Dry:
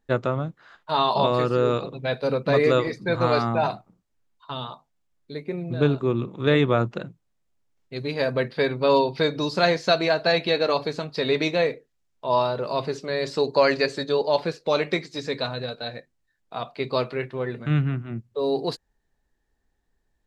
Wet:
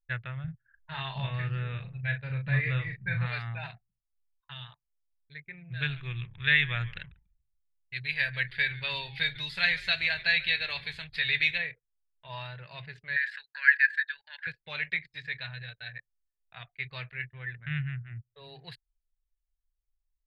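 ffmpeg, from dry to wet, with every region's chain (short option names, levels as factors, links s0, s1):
-filter_complex "[0:a]asettb=1/sr,asplit=3[s0][s1][s2];[s0]atrim=end=0.444[s3];[s1]atrim=start=0.44:end=3.26,asetpts=PTS-STARTPTS,afade=t=in:d=0.004:c=qsin,afade=t=out:st=2.816:d=0.004:c=qsin,bass=f=250:g=9,treble=f=4000:g=-12,asplit=2[s4][s5];[s5]adelay=37,volume=0.501[s6];[s4][s6]amix=inputs=2:normalize=0,atrim=end_sample=124362[s7];[s2]atrim=start=3.256[s8];[s3][s7]acrossfade=d=0.004:c1=hsin:c2=qsin[s9];[s9][s8]acrossfade=d=0.004:c1=qsin:c2=hsin,asettb=1/sr,asplit=3[s10][s11][s12];[s10]atrim=end=5.744[s13];[s11]atrim=start=5.74:end=11.58,asetpts=PTS-STARTPTS,afade=t=in:d=0.004:c=qsin,afade=t=out:st=5.836:d=0.004:c=qsin,highshelf=f=2300:g=11.5,asplit=5[s14][s15][s16][s17][s18];[s15]adelay=142,afreqshift=-140,volume=0.112[s19];[s16]adelay=284,afreqshift=-280,volume=0.0537[s20];[s17]adelay=426,afreqshift=-420,volume=0.0257[s21];[s18]adelay=568,afreqshift=-560,volume=0.0124[s22];[s14][s19][s20][s21][s22]amix=inputs=5:normalize=0,atrim=end_sample=257544[s23];[s12]atrim=start=11.576[s24];[s13][s23]acrossfade=d=0.004:c1=hsin:c2=qsin[s25];[s25][s24]acrossfade=d=0.004:c1=qsin:c2=hsin,asettb=1/sr,asplit=3[s26][s27][s28];[s26]atrim=end=13.164[s29];[s27]atrim=start=13.16:end=14.47,asetpts=PTS-STARTPTS,afade=t=in:d=0.004:c=qsin,afade=t=out:st=1.306:d=0.004:c=qsin,acompressor=threshold=0.0355:ratio=2:attack=3.2:release=140:knee=1:detection=peak,highpass=f=1600:t=q:w=8.9[s30];[s28]atrim=start=14.466[s31];[s29][s30]acrossfade=d=0.004:c1=hsin:c2=qsin[s32];[s32][s31]acrossfade=d=0.004:c1=qsin:c2=hsin,adynamicequalizer=threshold=0.0112:dfrequency=1600:dqfactor=1.3:tfrequency=1600:tqfactor=1.3:attack=5:release=100:ratio=0.375:range=3:mode=cutabove:tftype=bell,anlmdn=0.631,firequalizer=gain_entry='entry(120,0);entry(250,-28);entry(850,-14);entry(1200,-13);entry(1700,10);entry(3500,-1);entry(5800,-23);entry(9400,-8)':delay=0.05:min_phase=1,volume=0.531"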